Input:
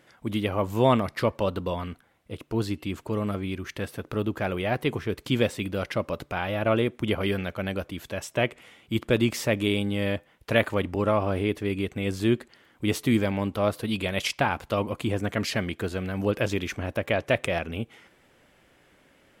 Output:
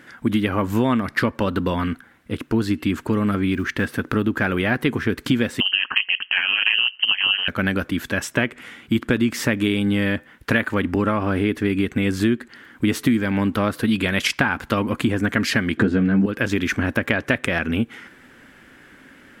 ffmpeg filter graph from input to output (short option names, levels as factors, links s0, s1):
-filter_complex "[0:a]asettb=1/sr,asplit=3[s0][s1][s2];[s0]atrim=end=3.534[s3];[s1]atrim=start=3.53:end=3.94,asetpts=PTS-STARTPTS,afade=t=in:d=0.004:c=qsin,afade=t=out:st=0.406:d=0.004:c=qsin,highshelf=f=5700:g=-6,acrusher=bits=8:mode=log:mix=0:aa=0.000001[s4];[s2]atrim=start=3.936[s5];[s3][s4]acrossfade=d=0.004:c1=hsin:c2=qsin[s6];[s6][s5]acrossfade=d=0.004:c1=qsin:c2=hsin,asettb=1/sr,asplit=3[s7][s8][s9];[s7]atrim=end=5.604[s10];[s8]atrim=start=5.6:end=7.48,asetpts=PTS-STARTPTS,afade=t=in:d=0.004:c=qsin,afade=t=out:st=1.876:d=0.004:c=qsin,equalizer=f=350:t=o:w=1.6:g=12,lowpass=f=2700:t=q:w=0.5098,lowpass=f=2700:t=q:w=0.6013,lowpass=f=2700:t=q:w=0.9,lowpass=f=2700:t=q:w=2.563,afreqshift=-3200,aeval=exprs='val(0)*sin(2*PI*95*n/s)':c=same[s11];[s9]atrim=start=7.476[s12];[s10][s11]acrossfade=d=0.004:c1=hsin:c2=qsin[s13];[s13][s12]acrossfade=d=0.004:c1=qsin:c2=hsin,asettb=1/sr,asplit=3[s14][s15][s16];[s14]atrim=end=15.774[s17];[s15]atrim=start=15.77:end=16.26,asetpts=PTS-STARTPTS,afade=t=in:d=0.004:c=qsin,afade=t=out:st=0.486:d=0.004:c=qsin,lowpass=6400,equalizer=f=200:w=0.32:g=13,asplit=2[s18][s19];[s19]adelay=15,volume=0.501[s20];[s18][s20]amix=inputs=2:normalize=0,atrim=end_sample=21609[s21];[s16]atrim=start=16.256[s22];[s17][s21]acrossfade=d=0.004:c1=hsin:c2=qsin[s23];[s23][s22]acrossfade=d=0.004:c1=qsin:c2=hsin,equalizer=f=250:t=o:w=0.67:g=9,equalizer=f=630:t=o:w=0.67:g=-5,equalizer=f=1600:t=o:w=0.67:g=10,acompressor=threshold=0.0631:ratio=6,volume=2.51"